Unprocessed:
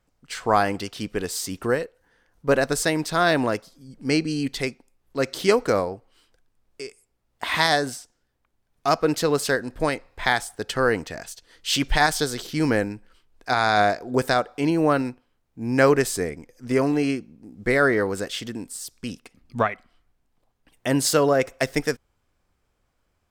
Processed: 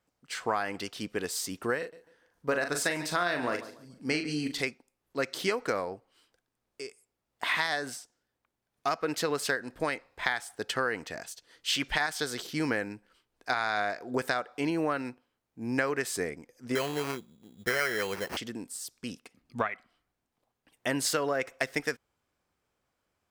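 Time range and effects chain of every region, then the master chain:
0:01.78–0:04.63: double-tracking delay 40 ms −7 dB + repeating echo 144 ms, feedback 29%, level −18 dB
0:16.75–0:18.37: parametric band 280 Hz −11.5 dB 0.33 octaves + sample-rate reduction 3,600 Hz
whole clip: high-pass filter 180 Hz 6 dB per octave; dynamic equaliser 1,900 Hz, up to +7 dB, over −35 dBFS, Q 0.77; downward compressor 6 to 1, threshold −21 dBFS; level −4.5 dB

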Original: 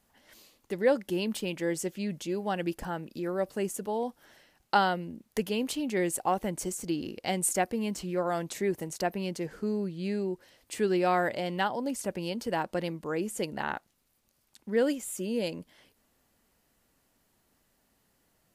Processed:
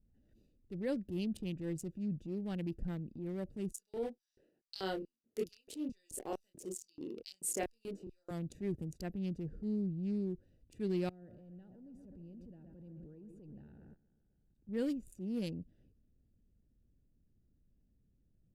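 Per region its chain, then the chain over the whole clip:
0:03.72–0:08.31: auto-filter high-pass square 2.3 Hz 400–5,000 Hz + double-tracking delay 26 ms −4 dB
0:11.09–0:14.69: mu-law and A-law mismatch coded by mu + bucket-brigade delay 128 ms, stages 2,048, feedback 60%, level −11.5 dB + output level in coarse steps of 23 dB
whole clip: adaptive Wiener filter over 41 samples; guitar amp tone stack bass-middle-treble 10-0-1; transient designer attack −6 dB, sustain +3 dB; level +14.5 dB

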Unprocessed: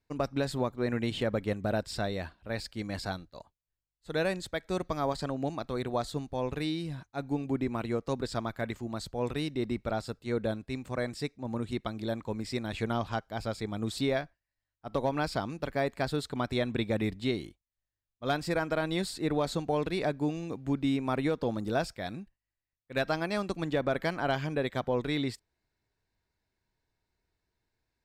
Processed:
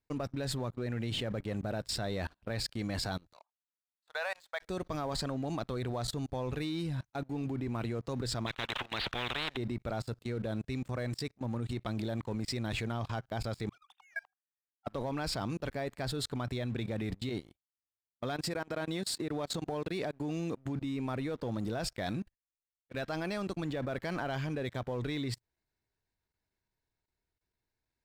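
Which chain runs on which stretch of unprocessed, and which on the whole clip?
0:03.33–0:04.62: inverse Chebyshev high-pass filter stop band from 350 Hz + high-shelf EQ 3,100 Hz −9.5 dB
0:08.46–0:09.57: one scale factor per block 7 bits + Chebyshev low-pass filter 3,700 Hz, order 6 + every bin compressed towards the loudest bin 10 to 1
0:13.69–0:14.87: three sine waves on the formant tracks + Chebyshev high-pass filter 750 Hz, order 10 + spectral tilt −4 dB per octave
0:17.29–0:20.76: high-pass filter 69 Hz + downward compressor 16 to 1, threshold −35 dBFS
whole clip: dynamic equaliser 120 Hz, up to +7 dB, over −53 dBFS, Q 5.8; output level in coarse steps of 21 dB; leveller curve on the samples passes 2

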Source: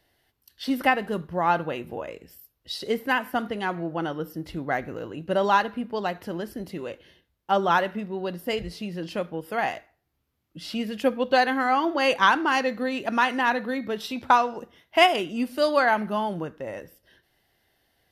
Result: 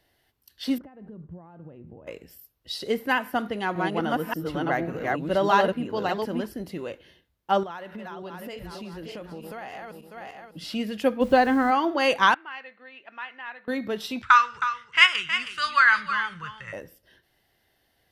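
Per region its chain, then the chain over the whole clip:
0:00.78–0:02.07: downward compressor 8 to 1, threshold −33 dBFS + resonant band-pass 100 Hz, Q 0.64
0:03.17–0:06.46: delay that plays each chunk backwards 584 ms, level −0.5 dB + high-pass filter 43 Hz
0:07.63–0:10.64: feedback delay that plays each chunk backwards 298 ms, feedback 53%, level −9 dB + downward compressor 8 to 1, threshold −34 dBFS + one half of a high-frequency compander encoder only
0:11.20–0:11.70: RIAA equalisation playback + background noise pink −50 dBFS
0:12.34–0:13.68: low-pass filter 2,600 Hz 24 dB per octave + first difference
0:14.22–0:16.73: drawn EQ curve 130 Hz 0 dB, 290 Hz −28 dB, 450 Hz −18 dB, 690 Hz −28 dB, 1,200 Hz +8 dB, 1,700 Hz +8 dB, 4,800 Hz +1 dB, 8,000 Hz +4 dB, 14,000 Hz −26 dB + single-tap delay 317 ms −10 dB
whole clip: no processing

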